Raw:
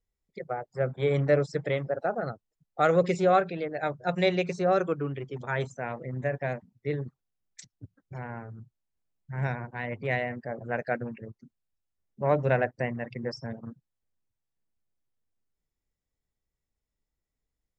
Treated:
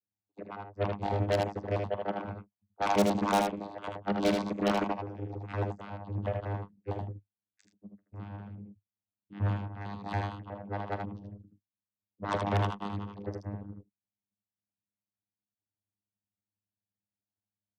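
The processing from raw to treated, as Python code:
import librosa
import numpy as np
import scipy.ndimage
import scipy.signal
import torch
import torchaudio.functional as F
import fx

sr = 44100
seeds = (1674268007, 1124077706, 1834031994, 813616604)

y = fx.pitch_trill(x, sr, semitones=10.0, every_ms=92)
y = y + 0.54 * np.pad(y, (int(5.5 * sr / 1000.0), 0))[:len(y)]
y = fx.vocoder(y, sr, bands=16, carrier='saw', carrier_hz=101.0)
y = fx.cheby_harmonics(y, sr, harmonics=(5, 7), levels_db=(-12, -13), full_scale_db=-13.5)
y = fx.room_early_taps(y, sr, ms=(43, 78), db=(-18.0, -4.5))
y = y * librosa.db_to_amplitude(-6.0)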